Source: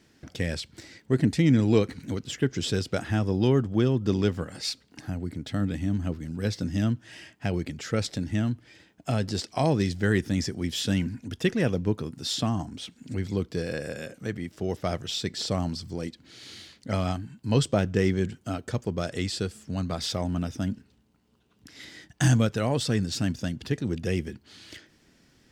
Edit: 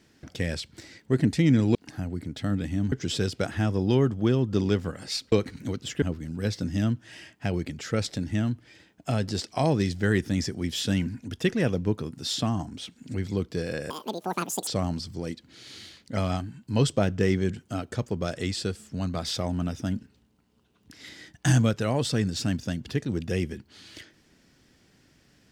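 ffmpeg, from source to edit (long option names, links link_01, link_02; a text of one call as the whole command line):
ffmpeg -i in.wav -filter_complex "[0:a]asplit=7[link_01][link_02][link_03][link_04][link_05][link_06][link_07];[link_01]atrim=end=1.752[link_08];[link_02]atrim=start=4.848:end=6.022[link_09];[link_03]atrim=start=2.448:end=4.852[link_10];[link_04]atrim=start=1.748:end=2.452[link_11];[link_05]atrim=start=6.018:end=13.904[link_12];[link_06]atrim=start=13.9:end=15.43,asetpts=PTS-STARTPTS,asetrate=87318,aresample=44100,atrim=end_sample=34077,asetpts=PTS-STARTPTS[link_13];[link_07]atrim=start=15.426[link_14];[link_08][link_09]acrossfade=duration=0.004:curve1=hsin:curve2=hsin[link_15];[link_15][link_10]acrossfade=duration=0.004:curve1=hsin:curve2=hsin[link_16];[link_16][link_11]acrossfade=duration=0.004:curve1=hsin:curve2=hsin[link_17];[link_17][link_12]acrossfade=duration=0.004:curve1=hsin:curve2=hsin[link_18];[link_18][link_13]acrossfade=duration=0.004:curve1=hsin:curve2=hsin[link_19];[link_19][link_14]acrossfade=duration=0.004:curve1=hsin:curve2=hsin" out.wav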